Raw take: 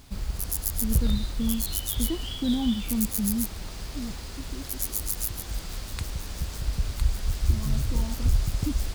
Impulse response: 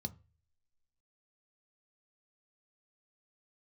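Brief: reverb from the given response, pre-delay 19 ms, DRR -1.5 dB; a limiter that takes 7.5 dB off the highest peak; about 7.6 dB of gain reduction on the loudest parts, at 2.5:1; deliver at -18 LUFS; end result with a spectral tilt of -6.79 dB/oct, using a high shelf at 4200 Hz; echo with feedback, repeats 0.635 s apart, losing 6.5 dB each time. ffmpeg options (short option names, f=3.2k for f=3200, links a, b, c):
-filter_complex "[0:a]highshelf=f=4.2k:g=-3.5,acompressor=threshold=-28dB:ratio=2.5,alimiter=limit=-22dB:level=0:latency=1,aecho=1:1:635|1270|1905|2540|3175|3810:0.473|0.222|0.105|0.0491|0.0231|0.0109,asplit=2[a][b];[1:a]atrim=start_sample=2205,adelay=19[c];[b][c]afir=irnorm=-1:irlink=0,volume=4dB[d];[a][d]amix=inputs=2:normalize=0,volume=6dB"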